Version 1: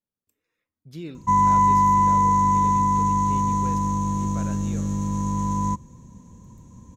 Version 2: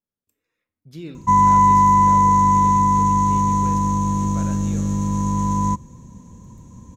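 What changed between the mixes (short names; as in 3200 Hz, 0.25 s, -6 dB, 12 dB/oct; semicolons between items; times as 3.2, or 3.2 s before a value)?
speech: send +7.0 dB; background +4.0 dB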